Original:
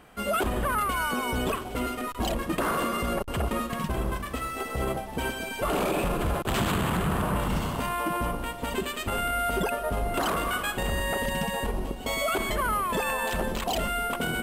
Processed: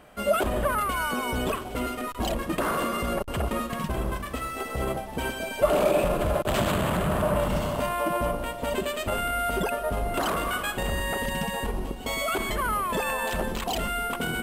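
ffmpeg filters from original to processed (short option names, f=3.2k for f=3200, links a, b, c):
-af "asetnsamples=n=441:p=0,asendcmd='0.81 equalizer g 3;5.4 equalizer g 13.5;9.14 equalizer g 2.5;10.96 equalizer g -3.5;12.76 equalizer g 2.5;13.44 equalizer g -5',equalizer=f=600:t=o:w=0.22:g=9.5"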